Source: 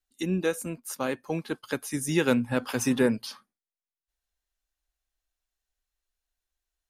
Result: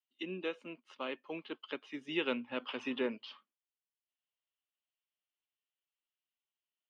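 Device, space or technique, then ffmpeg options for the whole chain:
phone earpiece: -af "highpass=160,highpass=360,equalizer=f=490:t=q:w=4:g=-4,equalizer=f=760:t=q:w=4:g=-7,equalizer=f=1.6k:t=q:w=4:g=-8,equalizer=f=3k:t=q:w=4:g=10,lowpass=f=3.2k:w=0.5412,lowpass=f=3.2k:w=1.3066,volume=-6dB"

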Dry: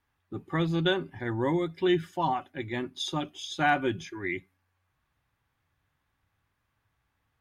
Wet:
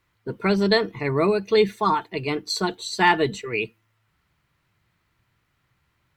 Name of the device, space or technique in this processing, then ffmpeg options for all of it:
nightcore: -af "asetrate=52920,aresample=44100,volume=7dB"

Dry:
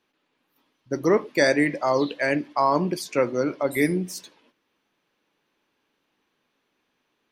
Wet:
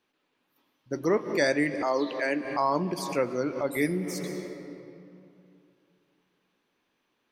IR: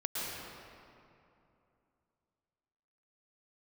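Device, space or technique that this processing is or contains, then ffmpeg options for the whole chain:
ducked reverb: -filter_complex "[0:a]asplit=3[a][b][c];[1:a]atrim=start_sample=2205[d];[b][d]afir=irnorm=-1:irlink=0[e];[c]apad=whole_len=322450[f];[e][f]sidechaincompress=threshold=-36dB:ratio=4:attack=7.3:release=103,volume=-7dB[g];[a][g]amix=inputs=2:normalize=0,asettb=1/sr,asplit=3[h][i][j];[h]atrim=end=1.824[k];[i]atrim=start=1.82:end=2.45,asetpts=PTS-STARTPTS,afade=t=in:d=0.004:c=qsin,afade=t=out:st=0.626:d=0.004:c=qsin,highpass=f=200:w=0.5412,highpass=f=200:w=1.3066[l];[j]atrim=start=2.446[m];[k][l]acrossfade=d=0.004:c1=hsin:c2=qsin[n];[n][m]acrossfade=d=0.004:c1=qsin:c2=hsin,volume=-5.5dB"

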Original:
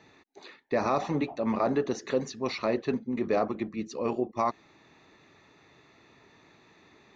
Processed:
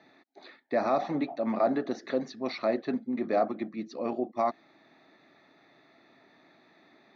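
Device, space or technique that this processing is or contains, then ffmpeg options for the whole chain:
kitchen radio: -af "highpass=220,equalizer=f=260:t=q:w=4:g=3,equalizer=f=440:t=q:w=4:g=-7,equalizer=f=670:t=q:w=4:g=6,equalizer=f=1k:t=q:w=4:g=-7,equalizer=f=2.8k:t=q:w=4:g=-10,lowpass=f=4.6k:w=0.5412,lowpass=f=4.6k:w=1.3066"

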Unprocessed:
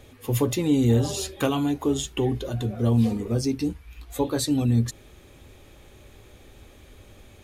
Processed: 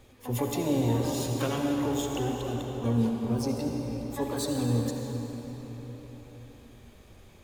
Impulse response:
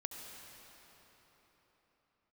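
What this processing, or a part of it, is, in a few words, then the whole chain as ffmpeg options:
shimmer-style reverb: -filter_complex "[0:a]asettb=1/sr,asplit=3[a][b][c];[a]atrim=end=2.614[d];[b]atrim=start=2.61:end=3.24,asetpts=PTS-STARTPTS,afade=t=in:d=0.004:c=qsin,afade=t=out:st=0.626:d=0.004:c=qsin,agate=range=-12dB:threshold=-21dB:ratio=16:detection=peak[e];[c]atrim=start=3.236[f];[d][e]acrossfade=d=0.004:c1=hsin:c2=qsin[g];[g][f]acrossfade=d=0.004:c1=qsin:c2=hsin,asplit=2[h][i];[i]asetrate=88200,aresample=44100,atempo=0.5,volume=-8dB[j];[h][j]amix=inputs=2:normalize=0[k];[1:a]atrim=start_sample=2205[l];[k][l]afir=irnorm=-1:irlink=0,volume=-3.5dB"

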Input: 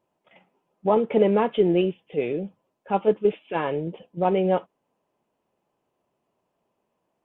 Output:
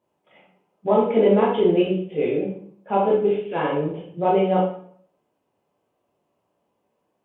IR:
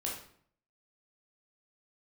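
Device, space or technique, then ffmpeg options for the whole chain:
bathroom: -filter_complex "[0:a]highpass=46,asettb=1/sr,asplit=3[a][b][c];[a]atrim=end=2.374[d];[b]atrim=start=2.37:end=3.02,asetpts=PTS-STARTPTS,afade=t=in:d=0.004:c=qsin,afade=t=out:st=0.646:d=0.004:c=qsin,equalizer=f=850:t=o:w=1.3:g=4.5[e];[c]atrim=start=3.016[f];[d][e]acrossfade=d=0.004:c1=hsin:c2=qsin[g];[g][f]acrossfade=d=0.004:c1=qsin:c2=hsin[h];[1:a]atrim=start_sample=2205[i];[h][i]afir=irnorm=-1:irlink=0"

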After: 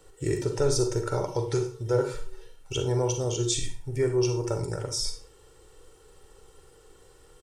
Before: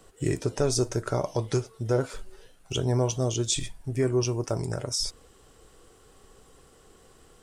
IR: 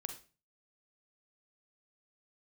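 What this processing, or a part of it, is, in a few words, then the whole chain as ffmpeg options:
microphone above a desk: -filter_complex "[0:a]aecho=1:1:2.2:0.62[a];[1:a]atrim=start_sample=2205[b];[a][b]afir=irnorm=-1:irlink=0"

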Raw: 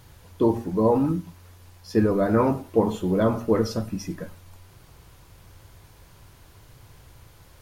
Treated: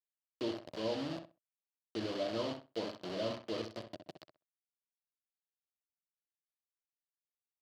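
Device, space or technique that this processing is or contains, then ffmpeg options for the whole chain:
hand-held game console: -filter_complex "[0:a]asettb=1/sr,asplit=3[a][b][c];[a]atrim=end=2.244[d];[b]atrim=start=2.24:end=3.21,asetpts=PTS-STARTPTS,afade=t=in:d=0.004:c=qsin,afade=t=out:st=0.966:d=0.004:c=qsin,highpass=f=78:p=1[e];[c]atrim=start=3.206[f];[d][e]acrossfade=d=0.004:c1=hsin:c2=qsin[g];[g][f]acrossfade=d=0.004:c1=qsin:c2=hsin,acrusher=bits=3:mix=0:aa=0.000001,highpass=400,equalizer=f=420:t=q:w=4:g=-9,equalizer=f=610:t=q:w=4:g=10,equalizer=f=870:t=q:w=4:g=-5,equalizer=f=1.4k:t=q:w=4:g=-4,equalizer=f=3k:t=q:w=4:g=9,equalizer=f=4.5k:t=q:w=4:g=8,lowpass=f=4.7k:w=0.5412,lowpass=f=4.7k:w=1.3066,acrossover=split=5700[h][i];[i]acompressor=threshold=-50dB:ratio=4:attack=1:release=60[j];[h][j]amix=inputs=2:normalize=0,firequalizer=gain_entry='entry(120,0);entry(200,-12);entry(380,-9);entry(540,-18);entry(1300,-19);entry(2400,-24);entry(13000,13)':delay=0.05:min_phase=1,asplit=2[k][l];[l]adelay=64,lowpass=f=2.8k:p=1,volume=-8dB,asplit=2[m][n];[n]adelay=64,lowpass=f=2.8k:p=1,volume=0.19,asplit=2[o][p];[p]adelay=64,lowpass=f=2.8k:p=1,volume=0.19[q];[k][m][o][q]amix=inputs=4:normalize=0"

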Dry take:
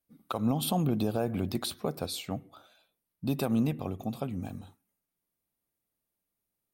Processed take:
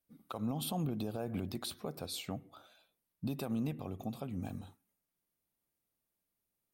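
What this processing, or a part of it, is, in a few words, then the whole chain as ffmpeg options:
stacked limiters: -af "alimiter=limit=-22dB:level=0:latency=1:release=119,alimiter=level_in=2dB:limit=-24dB:level=0:latency=1:release=371,volume=-2dB,volume=-1.5dB"

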